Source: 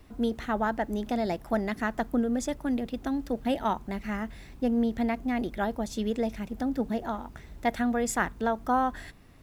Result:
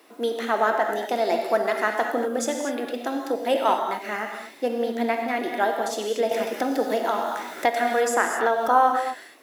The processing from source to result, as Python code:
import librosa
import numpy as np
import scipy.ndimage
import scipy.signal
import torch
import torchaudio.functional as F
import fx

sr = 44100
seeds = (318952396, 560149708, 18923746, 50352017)

y = scipy.signal.sosfilt(scipy.signal.butter(4, 340.0, 'highpass', fs=sr, output='sos'), x)
y = fx.peak_eq(y, sr, hz=11000.0, db=3.0, octaves=0.37)
y = fx.rev_gated(y, sr, seeds[0], gate_ms=270, shape='flat', drr_db=2.5)
y = fx.band_squash(y, sr, depth_pct=70, at=(6.31, 8.68))
y = y * librosa.db_to_amplitude(6.5)